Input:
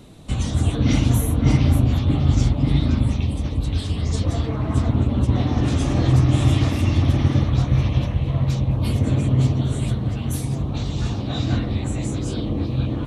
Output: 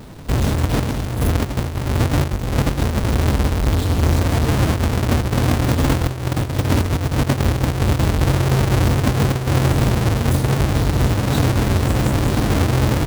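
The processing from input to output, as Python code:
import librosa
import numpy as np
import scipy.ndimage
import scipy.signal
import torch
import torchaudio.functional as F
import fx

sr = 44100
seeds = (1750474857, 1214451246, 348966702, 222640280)

y = fx.halfwave_hold(x, sr)
y = fx.over_compress(y, sr, threshold_db=-16.0, ratio=-0.5)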